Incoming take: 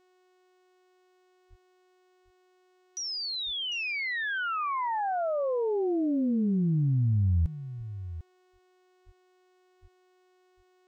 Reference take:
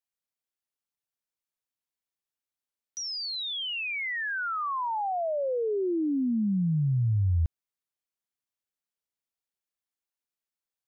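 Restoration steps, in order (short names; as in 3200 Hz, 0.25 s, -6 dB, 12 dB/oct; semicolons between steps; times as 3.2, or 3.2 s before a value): de-hum 367.2 Hz, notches 23; de-plosive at 1.49/3.45/7.2/7.77/9.05/9.81; inverse comb 0.749 s -13.5 dB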